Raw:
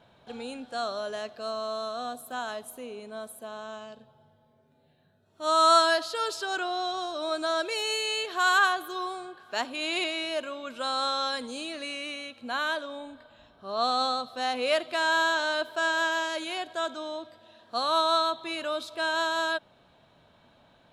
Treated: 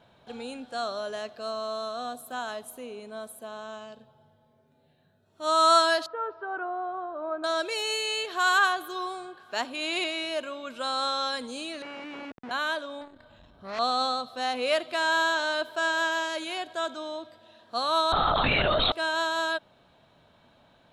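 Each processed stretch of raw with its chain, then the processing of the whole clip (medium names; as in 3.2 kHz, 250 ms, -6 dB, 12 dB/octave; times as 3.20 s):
6.06–7.44 s: low-pass 1.5 kHz 24 dB/octave + bass shelf 390 Hz -5 dB
11.82–12.51 s: Schmitt trigger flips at -40.5 dBFS + band-pass 190–2300 Hz
13.01–13.79 s: bass shelf 170 Hz +12 dB + transformer saturation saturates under 2.5 kHz
18.12–18.92 s: bass shelf 310 Hz -12 dB + LPC vocoder at 8 kHz whisper + level flattener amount 100%
whole clip: none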